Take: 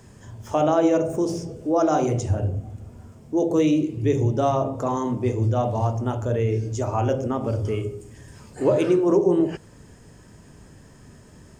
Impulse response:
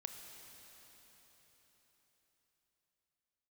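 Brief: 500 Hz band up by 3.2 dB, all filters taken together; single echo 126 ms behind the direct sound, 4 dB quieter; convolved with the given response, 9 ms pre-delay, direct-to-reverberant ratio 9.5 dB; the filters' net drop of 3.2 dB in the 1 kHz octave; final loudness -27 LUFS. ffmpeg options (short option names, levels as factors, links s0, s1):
-filter_complex "[0:a]equalizer=f=500:t=o:g=6.5,equalizer=f=1000:t=o:g=-9,aecho=1:1:126:0.631,asplit=2[s0][s1];[1:a]atrim=start_sample=2205,adelay=9[s2];[s1][s2]afir=irnorm=-1:irlink=0,volume=0.473[s3];[s0][s3]amix=inputs=2:normalize=0,volume=0.398"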